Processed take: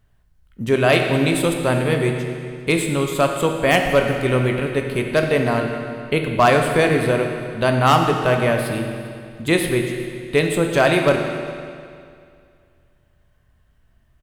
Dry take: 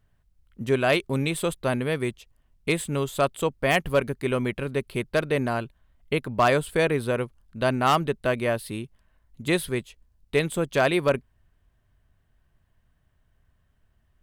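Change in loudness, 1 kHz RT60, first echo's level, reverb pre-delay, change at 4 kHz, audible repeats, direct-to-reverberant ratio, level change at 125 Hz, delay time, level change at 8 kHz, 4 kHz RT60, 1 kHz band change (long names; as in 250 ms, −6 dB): +6.5 dB, 2.3 s, −20.5 dB, 18 ms, +6.5 dB, 1, 3.0 dB, +8.0 dB, 400 ms, +6.5 dB, 2.1 s, +7.0 dB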